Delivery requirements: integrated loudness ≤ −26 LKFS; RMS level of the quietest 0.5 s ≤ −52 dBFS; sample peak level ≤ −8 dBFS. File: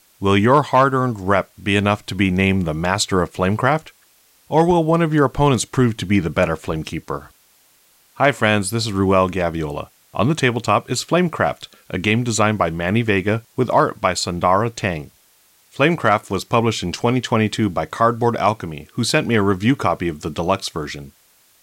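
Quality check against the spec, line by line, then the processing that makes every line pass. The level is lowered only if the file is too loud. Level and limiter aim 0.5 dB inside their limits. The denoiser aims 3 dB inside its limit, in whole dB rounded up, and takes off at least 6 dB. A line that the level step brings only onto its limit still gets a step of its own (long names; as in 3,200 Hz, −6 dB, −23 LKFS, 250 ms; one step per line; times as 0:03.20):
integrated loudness −18.5 LKFS: out of spec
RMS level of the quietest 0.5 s −56 dBFS: in spec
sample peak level −3.0 dBFS: out of spec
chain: level −8 dB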